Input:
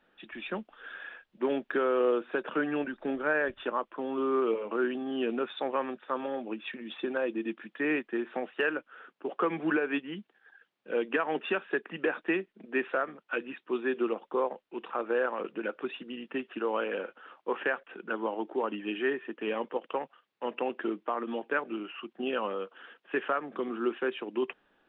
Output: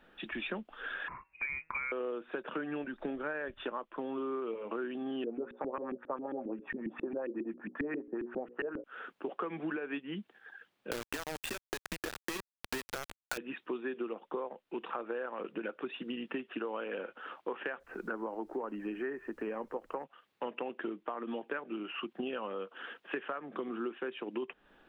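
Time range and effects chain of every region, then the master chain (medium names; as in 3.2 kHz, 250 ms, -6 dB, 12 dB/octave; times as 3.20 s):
1.08–1.92 s: frequency inversion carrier 2.7 kHz + feedback comb 160 Hz, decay 0.41 s, mix 40%
5.24–8.84 s: hum notches 60/120/180/240/300/360/420/480/540 Hz + LFO low-pass saw up 7.4 Hz 260–2400 Hz + distance through air 370 m
10.91–13.38 s: compression 10:1, threshold -38 dBFS + companded quantiser 2-bit
17.79–20.03 s: low-pass 2 kHz 24 dB/octave + added noise pink -73 dBFS
whole clip: bass shelf 99 Hz +9 dB; compression 6:1, threshold -41 dBFS; trim +5.5 dB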